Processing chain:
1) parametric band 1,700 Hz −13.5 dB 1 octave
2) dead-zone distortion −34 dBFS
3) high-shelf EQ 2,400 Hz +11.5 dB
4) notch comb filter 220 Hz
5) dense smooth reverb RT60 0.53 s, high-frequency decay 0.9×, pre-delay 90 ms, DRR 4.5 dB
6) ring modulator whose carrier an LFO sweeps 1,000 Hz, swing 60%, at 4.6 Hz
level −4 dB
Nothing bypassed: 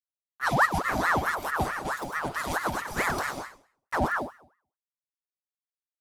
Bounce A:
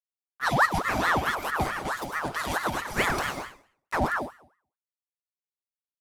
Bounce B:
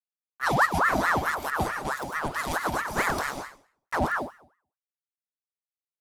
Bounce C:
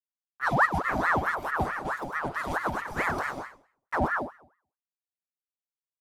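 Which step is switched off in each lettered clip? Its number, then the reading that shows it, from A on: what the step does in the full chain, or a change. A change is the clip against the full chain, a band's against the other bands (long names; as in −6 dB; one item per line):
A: 1, 4 kHz band +3.5 dB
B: 4, change in integrated loudness +1.0 LU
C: 3, 8 kHz band −10.0 dB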